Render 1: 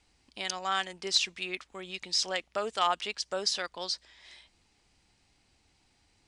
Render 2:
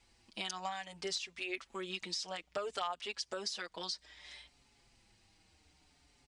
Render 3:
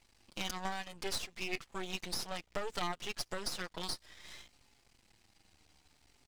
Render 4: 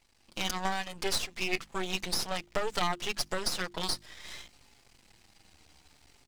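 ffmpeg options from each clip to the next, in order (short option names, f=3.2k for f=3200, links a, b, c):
-filter_complex "[0:a]acompressor=threshold=-36dB:ratio=10,asplit=2[a][b];[b]adelay=5.5,afreqshift=-0.61[c];[a][c]amix=inputs=2:normalize=1,volume=3.5dB"
-af "aeval=exprs='max(val(0),0)':c=same,volume=4.5dB"
-af "bandreject=f=50:t=h:w=6,bandreject=f=100:t=h:w=6,bandreject=f=150:t=h:w=6,bandreject=f=200:t=h:w=6,bandreject=f=250:t=h:w=6,bandreject=f=300:t=h:w=6,bandreject=f=350:t=h:w=6,dynaudnorm=f=230:g=3:m=7dB"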